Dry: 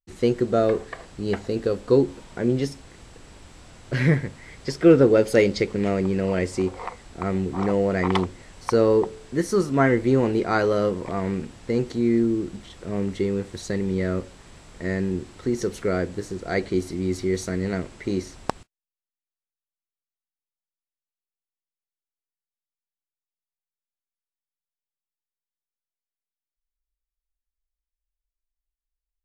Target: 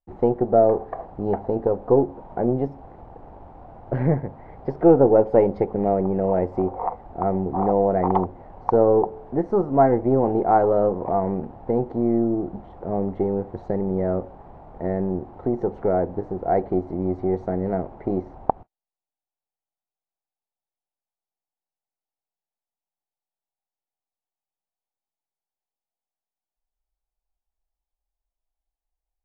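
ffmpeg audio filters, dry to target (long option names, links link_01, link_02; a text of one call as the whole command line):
ffmpeg -i in.wav -filter_complex "[0:a]aeval=exprs='if(lt(val(0),0),0.708*val(0),val(0))':channel_layout=same,asplit=2[link_01][link_02];[link_02]acompressor=threshold=-28dB:ratio=6,volume=0dB[link_03];[link_01][link_03]amix=inputs=2:normalize=0,lowpass=frequency=790:width_type=q:width=4.3,volume=-3dB" out.wav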